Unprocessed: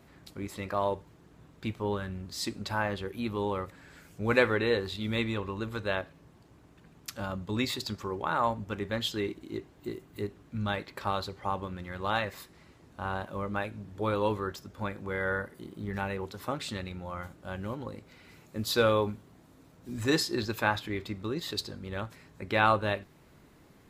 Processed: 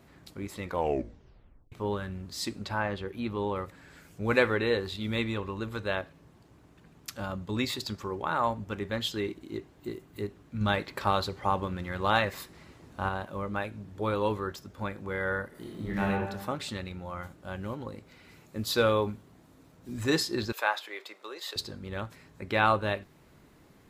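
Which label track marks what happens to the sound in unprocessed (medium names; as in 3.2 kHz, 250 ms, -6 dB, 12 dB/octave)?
0.610000	0.610000	tape stop 1.11 s
2.660000	3.560000	treble shelf 7.7 kHz -11.5 dB
10.610000	13.090000	gain +4.5 dB
15.490000	16.100000	reverb throw, RT60 1.1 s, DRR -3 dB
20.520000	21.560000	high-pass 490 Hz 24 dB/octave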